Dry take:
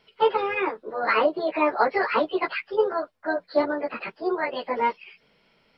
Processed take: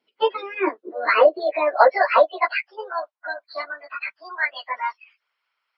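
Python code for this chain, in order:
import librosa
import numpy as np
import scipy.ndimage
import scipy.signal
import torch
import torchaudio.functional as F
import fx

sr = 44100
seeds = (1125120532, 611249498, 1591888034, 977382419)

y = fx.noise_reduce_blind(x, sr, reduce_db=16)
y = fx.hpss(y, sr, part='harmonic', gain_db=-10)
y = fx.filter_sweep_highpass(y, sr, from_hz=270.0, to_hz=1200.0, start_s=0.04, end_s=3.77, q=2.7)
y = y * 10.0 ** (5.0 / 20.0)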